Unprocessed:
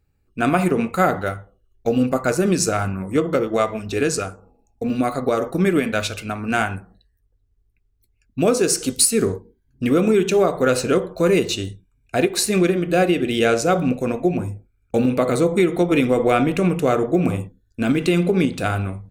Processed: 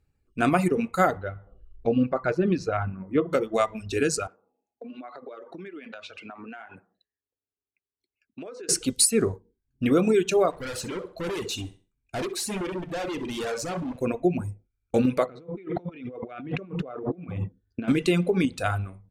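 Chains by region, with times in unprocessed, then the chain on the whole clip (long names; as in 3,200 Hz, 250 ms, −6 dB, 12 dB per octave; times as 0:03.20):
0:01.17–0:03.30: upward compression, threshold −24 dBFS + high-frequency loss of the air 290 metres
0:04.27–0:08.69: three-way crossover with the lows and the highs turned down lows −17 dB, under 230 Hz, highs −16 dB, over 4,400 Hz + downward compressor 12 to 1, threshold −32 dBFS + band-pass filter 110–7,000 Hz
0:10.50–0:14.02: gain into a clipping stage and back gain 24.5 dB + repeating echo 65 ms, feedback 27%, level −9 dB
0:15.26–0:17.88: high-pass filter 59 Hz + compressor whose output falls as the input rises −29 dBFS + high-frequency loss of the air 270 metres
whole clip: low-pass filter 12,000 Hz 12 dB per octave; reverb reduction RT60 2 s; level −3 dB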